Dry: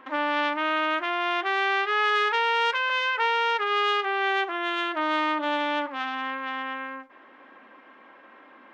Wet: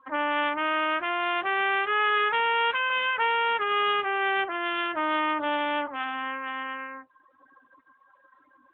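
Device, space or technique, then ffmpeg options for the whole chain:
mobile call with aggressive noise cancelling: -af "highpass=frequency=160:poles=1,afftdn=noise_reduction=32:noise_floor=-42" -ar 8000 -c:a libopencore_amrnb -b:a 12200

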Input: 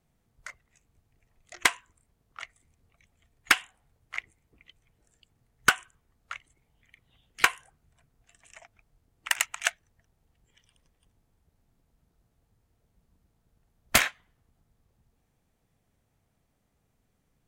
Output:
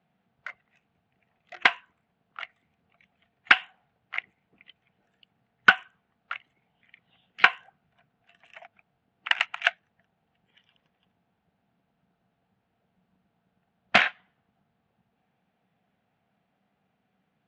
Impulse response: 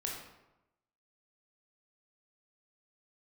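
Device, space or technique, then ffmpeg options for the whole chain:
kitchen radio: -af "highpass=160,equalizer=frequency=190:width_type=q:width=4:gain=8,equalizer=frequency=340:width_type=q:width=4:gain=-3,equalizer=frequency=740:width_type=q:width=4:gain=8,equalizer=frequency=1500:width_type=q:width=4:gain=5,equalizer=frequency=2700:width_type=q:width=4:gain=3,lowpass=frequency=3400:width=0.5412,lowpass=frequency=3400:width=1.3066,highshelf=frequency=4400:gain=8.5"

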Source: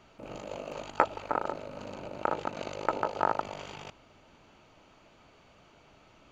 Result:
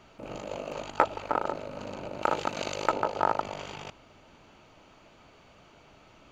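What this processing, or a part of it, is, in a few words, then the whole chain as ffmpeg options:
parallel distortion: -filter_complex "[0:a]asettb=1/sr,asplit=3[link_01][link_02][link_03];[link_01]atrim=end=2.224[link_04];[link_02]atrim=start=2.22:end=2.92,asetpts=PTS-STARTPTS,afade=type=in:duration=0.004:curve=qsin,afade=type=out:start_time=0.696:duration=0.004:curve=qsin,highshelf=frequency=2400:gain=9.5[link_05];[link_03]atrim=start=2.916[link_06];[link_04][link_05]acrossfade=duration=0.004:curve1=hsin:curve2=qsin[link_07];[link_07][link_06]acrossfade=duration=0.004:curve1=qsin:curve2=hsin,asplit=2[link_08][link_09];[link_09]asoftclip=type=hard:threshold=-22dB,volume=-8dB[link_10];[link_08][link_10]amix=inputs=2:normalize=0"

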